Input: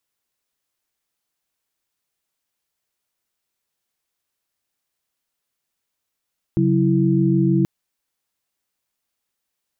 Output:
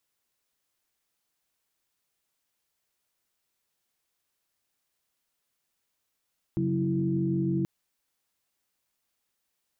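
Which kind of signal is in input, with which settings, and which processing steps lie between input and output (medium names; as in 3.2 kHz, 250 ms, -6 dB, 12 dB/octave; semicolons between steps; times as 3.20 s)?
chord C#3/F#3/E4 sine, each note -18.5 dBFS 1.08 s
peak limiter -21 dBFS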